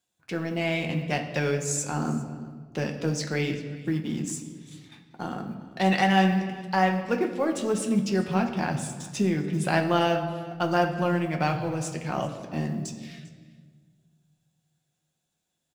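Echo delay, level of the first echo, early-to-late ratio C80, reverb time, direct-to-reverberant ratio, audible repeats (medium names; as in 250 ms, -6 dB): 397 ms, -21.0 dB, 10.0 dB, 1.6 s, 3.0 dB, 1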